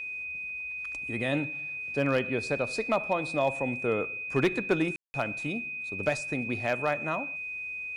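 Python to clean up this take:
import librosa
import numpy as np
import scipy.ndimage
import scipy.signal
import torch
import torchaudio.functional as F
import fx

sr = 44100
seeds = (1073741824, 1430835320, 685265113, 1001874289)

y = fx.fix_declip(x, sr, threshold_db=-17.0)
y = fx.notch(y, sr, hz=2500.0, q=30.0)
y = fx.fix_ambience(y, sr, seeds[0], print_start_s=7.42, print_end_s=7.92, start_s=4.96, end_s=5.14)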